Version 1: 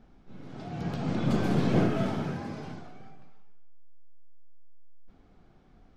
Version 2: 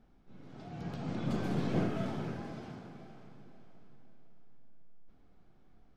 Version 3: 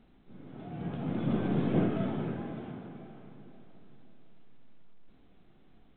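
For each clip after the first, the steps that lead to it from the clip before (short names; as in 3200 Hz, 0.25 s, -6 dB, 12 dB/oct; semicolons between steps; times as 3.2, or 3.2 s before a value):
diffused feedback echo 0.494 s, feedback 45%, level -12.5 dB; gain -7.5 dB
bell 280 Hz +5.5 dB 2.2 oct; A-law 64 kbps 8000 Hz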